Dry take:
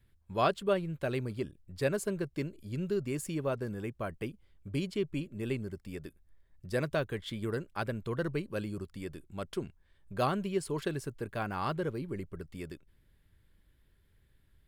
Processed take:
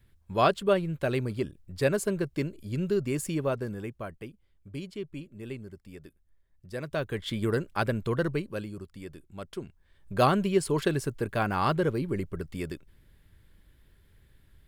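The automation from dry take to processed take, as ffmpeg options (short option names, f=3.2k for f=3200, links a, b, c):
-af "volume=25.5dB,afade=t=out:st=3.34:d=0.92:silence=0.334965,afade=t=in:st=6.82:d=0.55:silence=0.266073,afade=t=out:st=8.05:d=0.65:silence=0.375837,afade=t=in:st=9.66:d=0.55:silence=0.354813"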